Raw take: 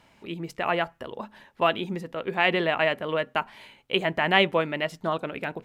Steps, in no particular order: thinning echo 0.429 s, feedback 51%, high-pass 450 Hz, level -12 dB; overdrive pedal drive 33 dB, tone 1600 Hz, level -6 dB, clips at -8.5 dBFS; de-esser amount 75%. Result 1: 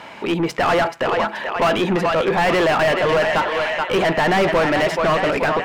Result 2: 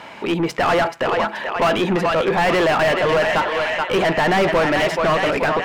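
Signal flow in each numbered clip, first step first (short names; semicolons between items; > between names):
de-esser > thinning echo > overdrive pedal; thinning echo > de-esser > overdrive pedal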